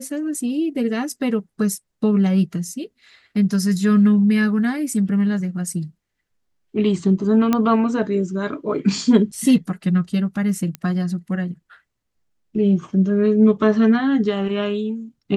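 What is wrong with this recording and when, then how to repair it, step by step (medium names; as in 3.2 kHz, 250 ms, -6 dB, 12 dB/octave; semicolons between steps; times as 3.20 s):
7.53 s: pop -6 dBFS
10.75 s: pop -14 dBFS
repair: de-click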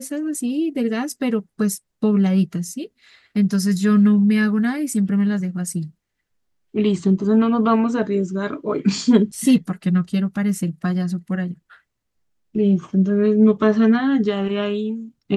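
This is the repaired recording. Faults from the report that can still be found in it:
nothing left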